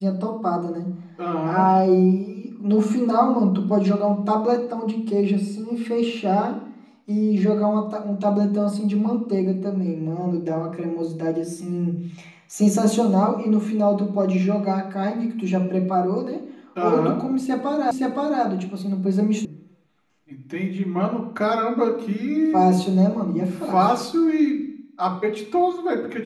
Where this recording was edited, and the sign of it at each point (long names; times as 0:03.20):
0:17.91: the same again, the last 0.52 s
0:19.45: cut off before it has died away